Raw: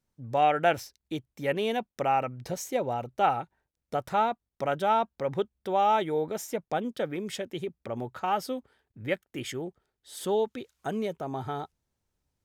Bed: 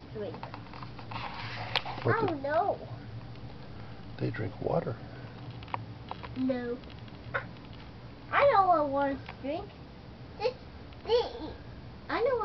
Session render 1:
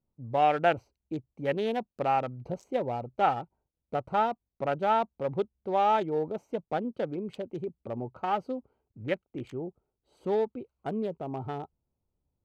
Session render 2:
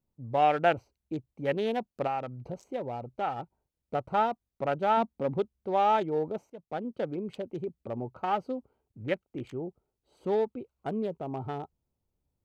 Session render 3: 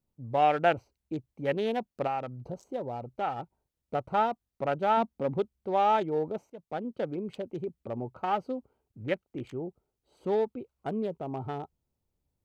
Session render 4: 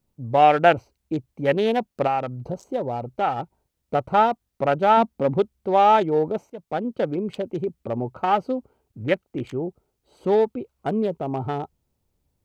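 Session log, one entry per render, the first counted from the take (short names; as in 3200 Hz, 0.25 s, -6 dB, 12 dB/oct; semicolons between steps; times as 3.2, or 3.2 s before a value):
Wiener smoothing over 25 samples; high shelf 6700 Hz -10 dB
2.07–3.39 compressor 1.5:1, threshold -38 dBFS; 4.97–5.38 bell 240 Hz +7.5 dB; 6.5–7.2 fade in equal-power, from -19 dB
2.28–2.96 bell 2300 Hz -8 dB 0.72 oct
gain +8.5 dB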